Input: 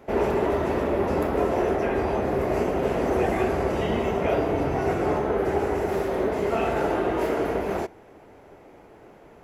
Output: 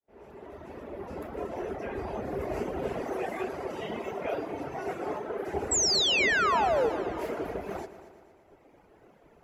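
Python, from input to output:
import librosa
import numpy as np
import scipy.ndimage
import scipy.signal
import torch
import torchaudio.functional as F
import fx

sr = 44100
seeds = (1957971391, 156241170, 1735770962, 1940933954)

y = fx.fade_in_head(x, sr, length_s=2.58)
y = fx.highpass(y, sr, hz=290.0, slope=6, at=(3.02, 5.54))
y = fx.dereverb_blind(y, sr, rt60_s=1.6)
y = fx.spec_paint(y, sr, seeds[0], shape='fall', start_s=5.71, length_s=1.19, low_hz=420.0, high_hz=8000.0, level_db=-20.0)
y = fx.echo_heads(y, sr, ms=116, heads='first and second', feedback_pct=55, wet_db=-17)
y = y * librosa.db_to_amplitude(-5.5)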